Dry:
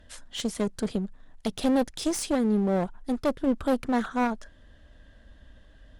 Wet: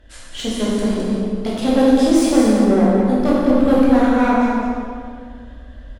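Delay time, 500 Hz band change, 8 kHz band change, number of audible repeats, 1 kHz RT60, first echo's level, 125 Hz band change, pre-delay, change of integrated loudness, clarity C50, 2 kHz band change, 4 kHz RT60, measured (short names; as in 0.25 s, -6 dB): 0.211 s, +11.5 dB, +6.5 dB, 1, 1.9 s, -5.5 dB, +10.0 dB, 11 ms, +12.0 dB, -3.5 dB, +10.5 dB, 1.4 s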